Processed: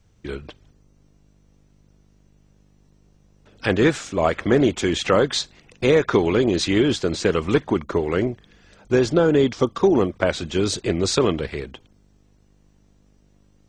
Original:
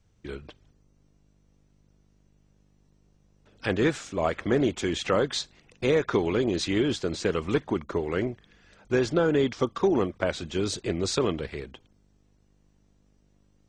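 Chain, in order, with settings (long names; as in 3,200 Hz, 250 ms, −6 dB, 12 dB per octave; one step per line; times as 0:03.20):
0:08.16–0:10.16: parametric band 1,800 Hz −3.5 dB 1.7 octaves
level +6.5 dB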